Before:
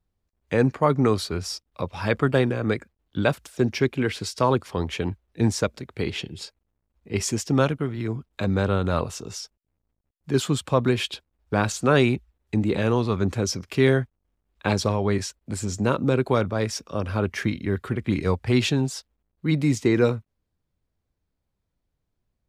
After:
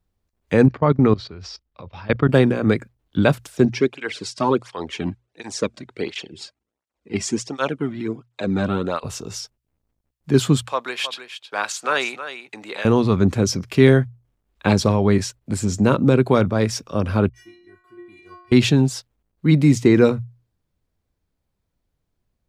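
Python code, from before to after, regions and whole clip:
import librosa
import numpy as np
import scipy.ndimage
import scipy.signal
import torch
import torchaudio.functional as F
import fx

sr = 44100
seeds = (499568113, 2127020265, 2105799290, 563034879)

y = fx.chain(x, sr, fx.lowpass(hz=4900.0, slope=24),
    fx.low_shelf(hz=120.0, db=4.5),
    fx.level_steps(step_db=20), at=(0.66, 2.29))
y = fx.chain(y, sr, fx.lowpass(hz=9200.0, slope=24),
    fx.peak_eq(hz=120.0, db=-5.5, octaves=1.6),
    fx.flanger_cancel(hz=1.4, depth_ms=2.4), at=(3.65, 9.04))
y = fx.chain(y, sr, fx.highpass(hz=860.0, slope=12),
    fx.high_shelf(hz=11000.0, db=-6.5),
    fx.echo_single(ms=317, db=-11.0), at=(10.65, 12.85))
y = fx.chain(y, sr, fx.stiff_resonator(f0_hz=350.0, decay_s=0.77, stiffness=0.008),
    fx.band_widen(depth_pct=40), at=(17.29, 18.52))
y = fx.hum_notches(y, sr, base_hz=60, count=2)
y = fx.dynamic_eq(y, sr, hz=190.0, q=0.78, threshold_db=-35.0, ratio=4.0, max_db=5)
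y = y * 10.0 ** (3.5 / 20.0)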